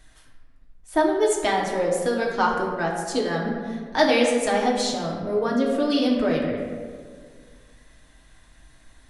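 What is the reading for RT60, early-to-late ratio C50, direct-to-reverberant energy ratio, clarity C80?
1.8 s, 2.5 dB, -3.0 dB, 4.5 dB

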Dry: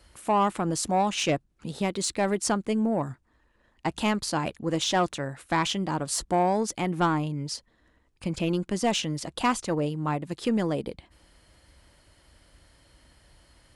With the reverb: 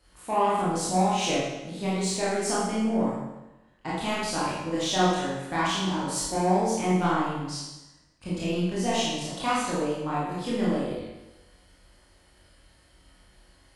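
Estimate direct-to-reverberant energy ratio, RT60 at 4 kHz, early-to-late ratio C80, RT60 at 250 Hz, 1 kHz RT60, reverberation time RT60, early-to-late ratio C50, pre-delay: -8.5 dB, 0.95 s, 2.0 dB, 1.0 s, 1.0 s, 1.0 s, -1.5 dB, 22 ms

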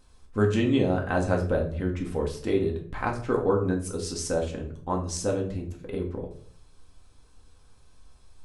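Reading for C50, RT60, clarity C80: 9.0 dB, 0.60 s, 13.0 dB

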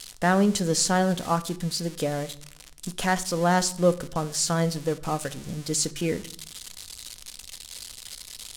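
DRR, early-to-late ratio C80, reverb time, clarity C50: 11.0 dB, 22.0 dB, 0.60 s, 18.5 dB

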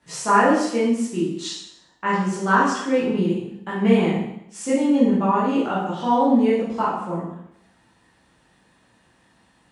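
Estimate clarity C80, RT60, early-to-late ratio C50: 5.0 dB, 0.75 s, 1.5 dB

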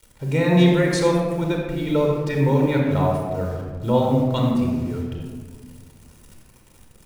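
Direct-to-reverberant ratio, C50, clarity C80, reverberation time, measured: -0.5 dB, 1.5 dB, 3.0 dB, 1.7 s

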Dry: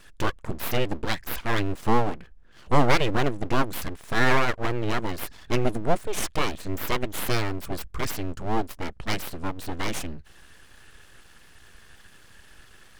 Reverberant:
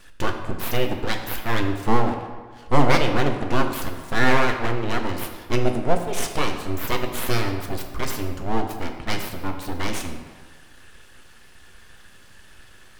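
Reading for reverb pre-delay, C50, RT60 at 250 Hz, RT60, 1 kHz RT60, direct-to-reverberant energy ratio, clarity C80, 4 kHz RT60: 3 ms, 6.5 dB, 1.4 s, 1.5 s, 1.5 s, 4.0 dB, 8.5 dB, 1.0 s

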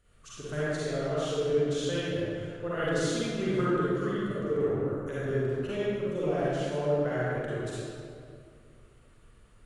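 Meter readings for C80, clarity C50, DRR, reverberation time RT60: -3.5 dB, -8.0 dB, -10.0 dB, 2.3 s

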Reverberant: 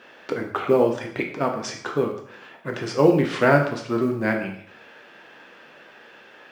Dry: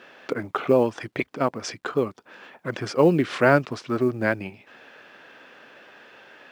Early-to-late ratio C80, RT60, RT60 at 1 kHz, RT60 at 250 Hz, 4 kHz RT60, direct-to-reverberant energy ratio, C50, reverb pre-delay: 11.0 dB, 0.65 s, 0.60 s, 0.65 s, 0.60 s, 2.0 dB, 7.5 dB, 6 ms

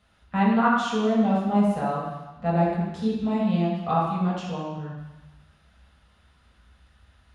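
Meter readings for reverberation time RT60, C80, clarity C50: 1.1 s, 3.0 dB, 0.0 dB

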